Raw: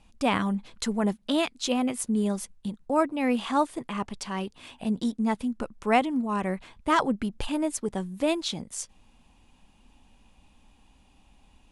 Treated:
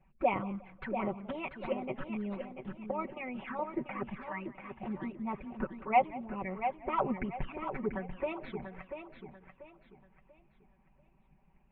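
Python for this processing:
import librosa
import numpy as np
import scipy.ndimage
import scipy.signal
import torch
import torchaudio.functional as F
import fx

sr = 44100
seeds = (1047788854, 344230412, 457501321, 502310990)

y = fx.tracing_dist(x, sr, depth_ms=0.046)
y = fx.env_flanger(y, sr, rest_ms=5.5, full_db=-23.5)
y = scipy.signal.sosfilt(scipy.signal.ellip(4, 1.0, 60, 2300.0, 'lowpass', fs=sr, output='sos'), y)
y = fx.peak_eq(y, sr, hz=140.0, db=8.5, octaves=0.29)
y = y + 0.89 * np.pad(y, (int(5.3 * sr / 1000.0), 0))[:len(y)]
y = fx.hpss(y, sr, part='harmonic', gain_db=-16)
y = fx.echo_feedback(y, sr, ms=689, feedback_pct=32, wet_db=-8.0)
y = fx.echo_warbled(y, sr, ms=179, feedback_pct=34, rate_hz=2.8, cents=115, wet_db=-19.5)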